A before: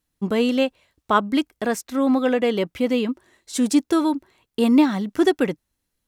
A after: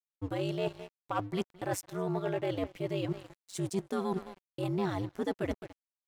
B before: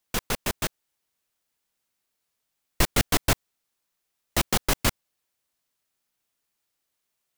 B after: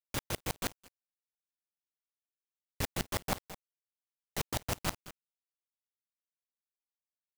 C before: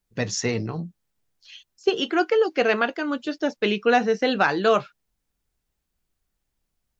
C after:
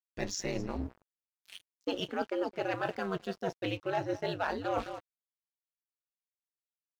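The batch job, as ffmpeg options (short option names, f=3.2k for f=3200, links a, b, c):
-filter_complex "[0:a]adynamicequalizer=threshold=0.02:dfrequency=710:dqfactor=1.7:tfrequency=710:tqfactor=1.7:attack=5:release=100:ratio=0.375:range=3:mode=boostabove:tftype=bell,acontrast=68,asplit=2[a][b];[b]aecho=0:1:214:0.0841[c];[a][c]amix=inputs=2:normalize=0,aeval=exprs='val(0)*sin(2*PI*96*n/s)':c=same,aeval=exprs='sgn(val(0))*max(abs(val(0))-0.01,0)':c=same,areverse,acompressor=threshold=-29dB:ratio=4,areverse,volume=-3.5dB"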